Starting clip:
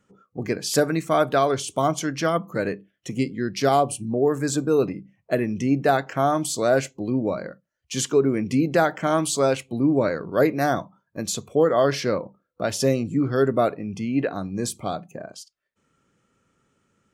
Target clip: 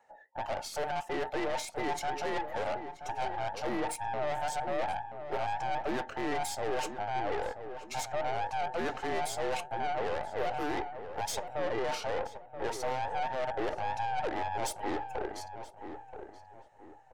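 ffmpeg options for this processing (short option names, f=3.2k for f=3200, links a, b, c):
-filter_complex "[0:a]afftfilt=real='real(if(between(b,1,1008),(2*floor((b-1)/48)+1)*48-b,b),0)':imag='imag(if(between(b,1,1008),(2*floor((b-1)/48)+1)*48-b,b),0)*if(between(b,1,1008),-1,1)':win_size=2048:overlap=0.75,highpass=f=240:p=1,highshelf=f=2.8k:g=-10.5,areverse,acompressor=threshold=-29dB:ratio=8,areverse,aeval=exprs='(tanh(56.2*val(0)+0.6)-tanh(0.6))/56.2':c=same,asplit=2[a][b];[b]adelay=979,lowpass=f=1.6k:p=1,volume=-9dB,asplit=2[c][d];[d]adelay=979,lowpass=f=1.6k:p=1,volume=0.36,asplit=2[e][f];[f]adelay=979,lowpass=f=1.6k:p=1,volume=0.36,asplit=2[g][h];[h]adelay=979,lowpass=f=1.6k:p=1,volume=0.36[i];[a][c][e][g][i]amix=inputs=5:normalize=0,volume=5dB"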